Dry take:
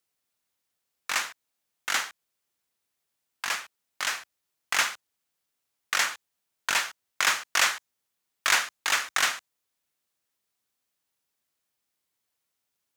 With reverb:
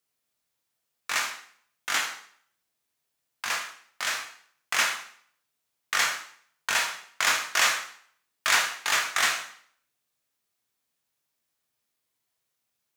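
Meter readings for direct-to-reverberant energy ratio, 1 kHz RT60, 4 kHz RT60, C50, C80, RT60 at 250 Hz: 1.0 dB, 0.55 s, 0.55 s, 7.5 dB, 11.0 dB, 0.60 s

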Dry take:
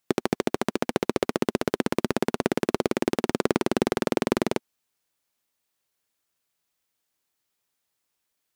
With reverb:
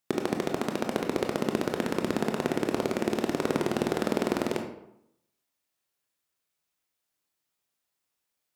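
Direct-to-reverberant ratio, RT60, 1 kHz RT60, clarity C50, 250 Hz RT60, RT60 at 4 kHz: 3.0 dB, 0.80 s, 0.80 s, 6.0 dB, 0.85 s, 0.50 s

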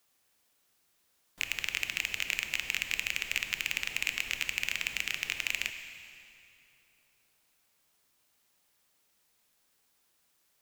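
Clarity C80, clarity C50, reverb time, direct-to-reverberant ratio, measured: 8.5 dB, 7.5 dB, 2.9 s, 7.0 dB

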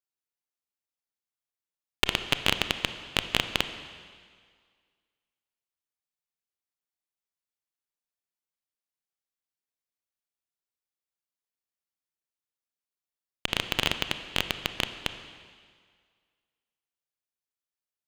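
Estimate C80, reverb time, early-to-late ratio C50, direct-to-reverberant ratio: 11.0 dB, 1.9 s, 10.0 dB, 9.0 dB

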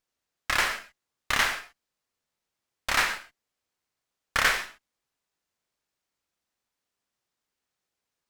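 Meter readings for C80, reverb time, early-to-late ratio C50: 12.0 dB, not exponential, 9.5 dB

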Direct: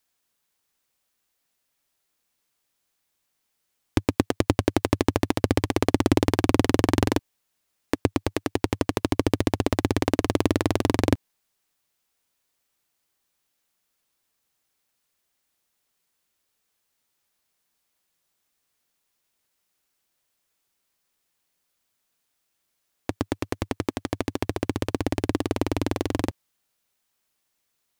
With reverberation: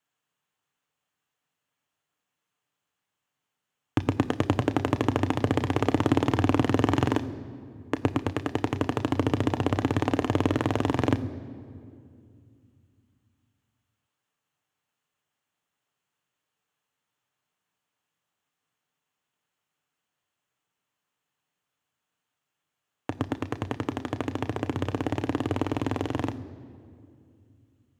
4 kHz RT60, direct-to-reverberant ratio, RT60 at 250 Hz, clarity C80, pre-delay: 1.5 s, 9.0 dB, 3.4 s, 16.5 dB, 3 ms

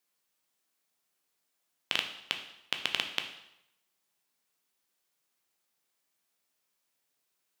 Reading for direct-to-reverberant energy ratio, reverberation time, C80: 5.0 dB, 0.80 s, 11.5 dB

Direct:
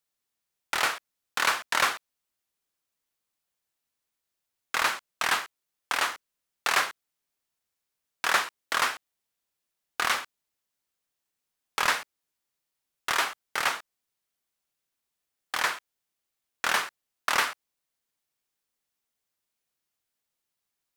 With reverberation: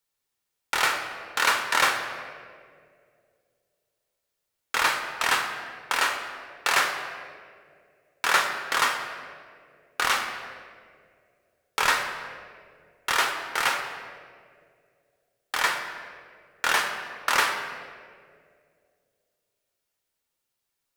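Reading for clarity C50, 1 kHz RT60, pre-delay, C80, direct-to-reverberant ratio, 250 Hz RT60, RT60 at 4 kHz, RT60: 6.5 dB, 1.8 s, 7 ms, 7.5 dB, 3.5 dB, 2.5 s, 1.2 s, 2.3 s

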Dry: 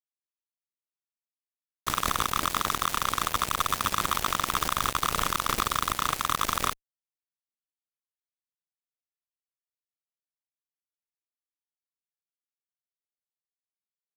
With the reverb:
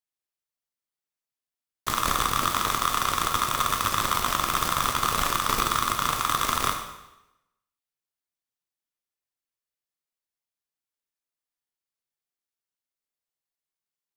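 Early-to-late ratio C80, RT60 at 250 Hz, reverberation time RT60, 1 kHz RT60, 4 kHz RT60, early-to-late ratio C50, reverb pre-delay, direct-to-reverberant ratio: 9.0 dB, 0.95 s, 0.90 s, 0.90 s, 0.85 s, 7.0 dB, 5 ms, 3.0 dB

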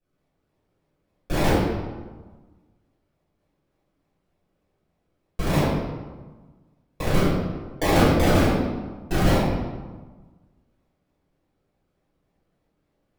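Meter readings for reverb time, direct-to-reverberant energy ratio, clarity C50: 1.4 s, -13.0 dB, -1.5 dB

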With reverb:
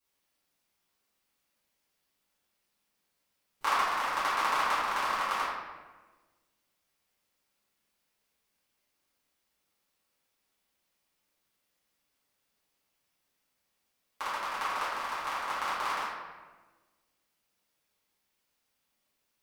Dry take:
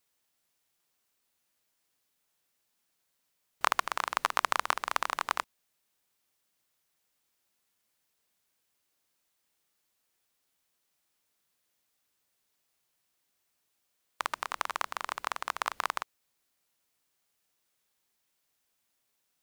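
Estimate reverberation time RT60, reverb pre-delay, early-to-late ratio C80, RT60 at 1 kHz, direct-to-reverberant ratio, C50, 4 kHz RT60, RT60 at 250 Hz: 1.3 s, 4 ms, 1.5 dB, 1.2 s, -13.0 dB, -1.0 dB, 0.85 s, 1.7 s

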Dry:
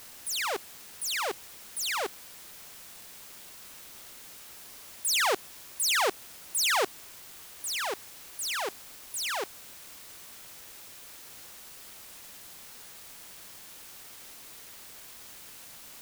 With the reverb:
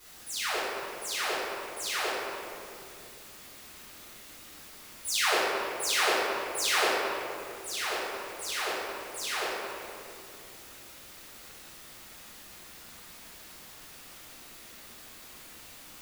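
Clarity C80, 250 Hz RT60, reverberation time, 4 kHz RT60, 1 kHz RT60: -1.0 dB, 3.7 s, 2.5 s, 1.5 s, 2.2 s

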